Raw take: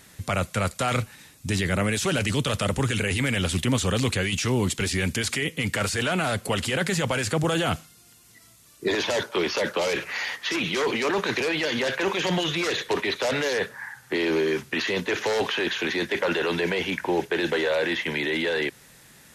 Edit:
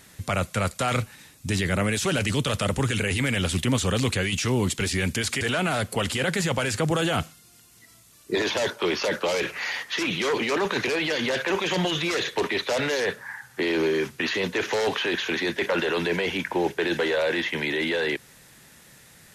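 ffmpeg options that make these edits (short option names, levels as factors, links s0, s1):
-filter_complex "[0:a]asplit=2[s0][s1];[s0]atrim=end=5.412[s2];[s1]atrim=start=5.938[s3];[s2][s3]acrossfade=d=0.004:c1=hsin:c2=hsin"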